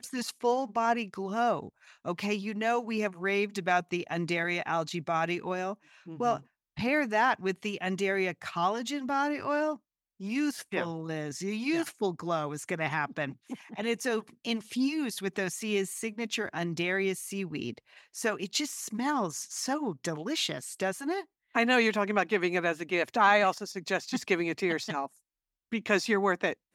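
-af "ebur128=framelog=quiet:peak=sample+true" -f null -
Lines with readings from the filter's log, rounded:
Integrated loudness:
  I:         -30.5 LUFS
  Threshold: -40.7 LUFS
Loudness range:
  LRA:         5.4 LU
  Threshold: -50.8 LUFS
  LRA low:   -32.8 LUFS
  LRA high:  -27.4 LUFS
Sample peak:
  Peak:       -9.5 dBFS
True peak:
  Peak:       -9.5 dBFS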